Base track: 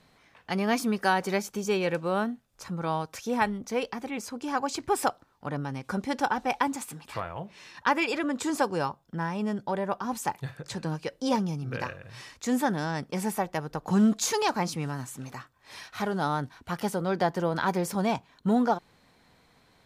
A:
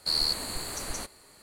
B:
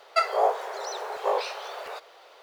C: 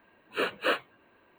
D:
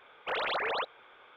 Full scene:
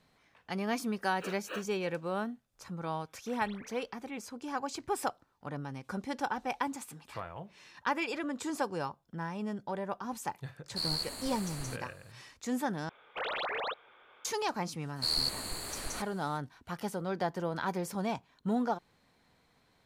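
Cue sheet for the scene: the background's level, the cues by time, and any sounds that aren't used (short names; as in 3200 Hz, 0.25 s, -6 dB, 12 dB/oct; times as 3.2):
base track -7 dB
0.85 add C -14.5 dB
2.99 add D -17 dB + bell 710 Hz -12 dB 1.5 oct
10.7 add A -7.5 dB
12.89 replace with D -3.5 dB
14.96 add A -4 dB
not used: B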